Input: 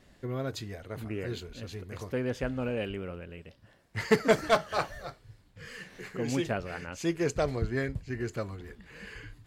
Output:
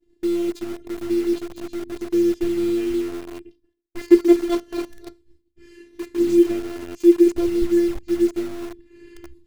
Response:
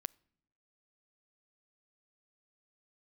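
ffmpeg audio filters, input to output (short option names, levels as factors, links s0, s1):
-filter_complex "[0:a]equalizer=f=1500:w=2.2:g=-6.5,afftfilt=real='hypot(re,im)*cos(PI*b)':imag='0':win_size=512:overlap=0.75,lowshelf=f=510:t=q:w=3:g=11,agate=range=0.0224:threshold=0.00794:ratio=3:detection=peak,asplit=2[s0][s1];[s1]acrusher=bits=4:mix=0:aa=0.000001,volume=0.562[s2];[s0][s2]amix=inputs=2:normalize=0,volume=0.668"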